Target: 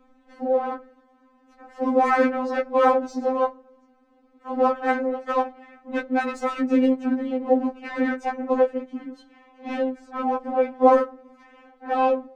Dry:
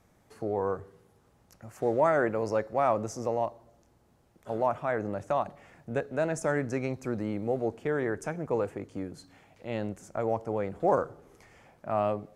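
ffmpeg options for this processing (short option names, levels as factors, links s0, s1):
-filter_complex "[0:a]asplit=4[s0][s1][s2][s3];[s1]asetrate=33038,aresample=44100,atempo=1.33484,volume=0.501[s4];[s2]asetrate=55563,aresample=44100,atempo=0.793701,volume=0.398[s5];[s3]asetrate=66075,aresample=44100,atempo=0.66742,volume=0.2[s6];[s0][s4][s5][s6]amix=inputs=4:normalize=0,adynamicsmooth=sensitivity=3.5:basefreq=2500,afftfilt=real='re*3.46*eq(mod(b,12),0)':imag='im*3.46*eq(mod(b,12),0)':win_size=2048:overlap=0.75,volume=2.82"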